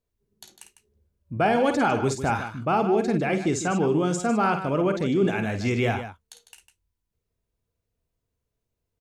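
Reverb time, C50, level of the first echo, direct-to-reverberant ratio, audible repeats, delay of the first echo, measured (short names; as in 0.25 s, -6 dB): none, none, -8.5 dB, none, 2, 51 ms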